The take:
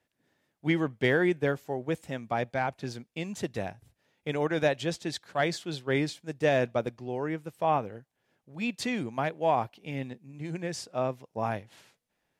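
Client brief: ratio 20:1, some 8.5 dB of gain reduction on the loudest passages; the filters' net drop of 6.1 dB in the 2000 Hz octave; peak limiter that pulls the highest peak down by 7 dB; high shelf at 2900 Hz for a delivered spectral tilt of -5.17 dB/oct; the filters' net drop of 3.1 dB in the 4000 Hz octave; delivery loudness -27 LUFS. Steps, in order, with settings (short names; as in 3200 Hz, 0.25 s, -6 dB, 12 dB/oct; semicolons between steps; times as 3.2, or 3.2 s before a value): bell 2000 Hz -8.5 dB; high shelf 2900 Hz +6.5 dB; bell 4000 Hz -6.5 dB; compressor 20:1, threshold -29 dBFS; gain +11 dB; limiter -15 dBFS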